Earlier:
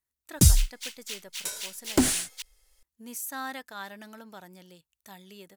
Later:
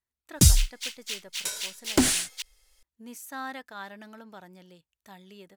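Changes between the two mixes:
background: add treble shelf 2.1 kHz +9.5 dB; master: add treble shelf 5.8 kHz -11 dB

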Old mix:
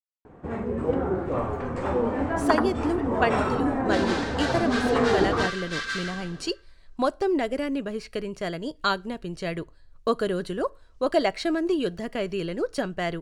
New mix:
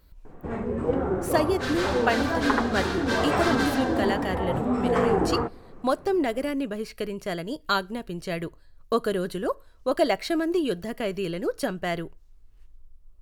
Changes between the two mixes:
speech: entry -1.15 s; second sound: entry -2.30 s; master: remove Savitzky-Golay filter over 9 samples

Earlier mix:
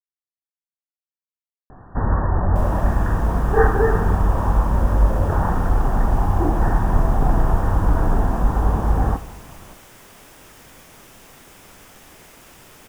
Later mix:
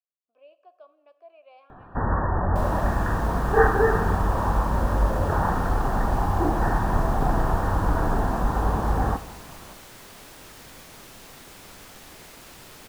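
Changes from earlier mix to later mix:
speech: unmuted; first sound: add tilt EQ +1.5 dB/octave; second sound: add peaking EQ 4.2 kHz +7.5 dB 0.33 oct

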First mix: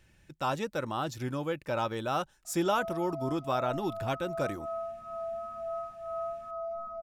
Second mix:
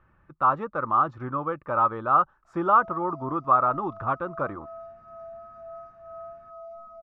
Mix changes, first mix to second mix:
speech: add resonant low-pass 1.2 kHz, resonance Q 9.3; background -5.5 dB

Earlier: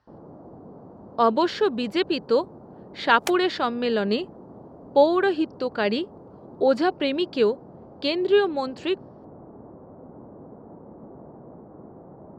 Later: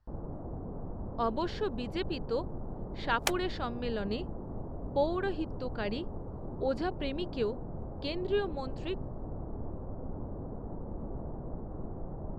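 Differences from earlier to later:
speech -12.0 dB; master: remove high-pass 180 Hz 12 dB/octave

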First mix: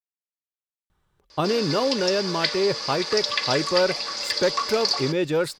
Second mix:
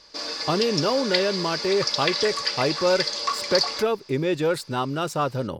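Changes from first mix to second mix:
speech: entry -0.90 s; background: entry -1.30 s

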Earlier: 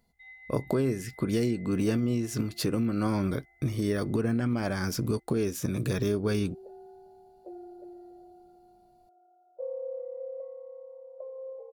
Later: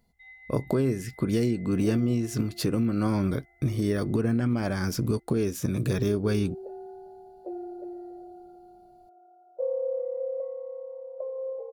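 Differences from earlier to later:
second sound +6.0 dB; master: add bass shelf 320 Hz +3.5 dB

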